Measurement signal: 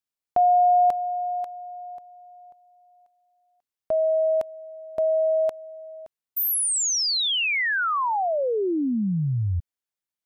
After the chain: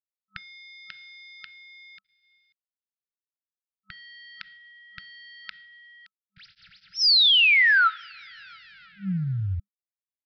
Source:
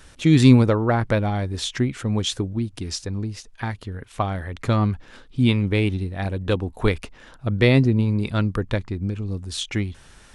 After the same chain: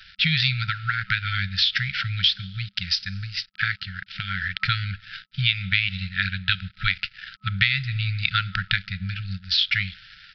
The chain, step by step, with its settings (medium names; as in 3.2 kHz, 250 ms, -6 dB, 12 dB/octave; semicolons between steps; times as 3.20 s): tilt shelf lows -9.5 dB, about 700 Hz; two-slope reverb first 0.51 s, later 2.3 s, from -17 dB, DRR 17.5 dB; compression 8:1, threshold -23 dBFS; crossover distortion -45.5 dBFS; resampled via 11.025 kHz; FFT band-reject 200–1300 Hz; trim +7.5 dB